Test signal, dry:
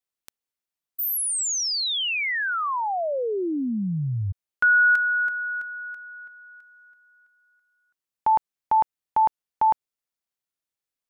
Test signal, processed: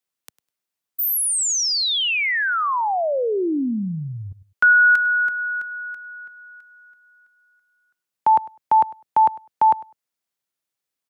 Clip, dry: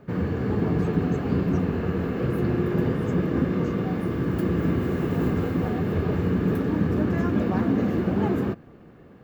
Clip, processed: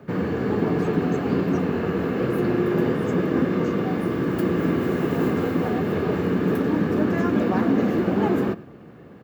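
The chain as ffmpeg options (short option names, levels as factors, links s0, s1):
-filter_complex "[0:a]highpass=86,aecho=1:1:101|202:0.1|0.016,acrossover=split=200|950[s0][s1][s2];[s0]acompressor=threshold=0.01:ratio=4:attack=50:release=136[s3];[s3][s1][s2]amix=inputs=3:normalize=0,volume=1.68"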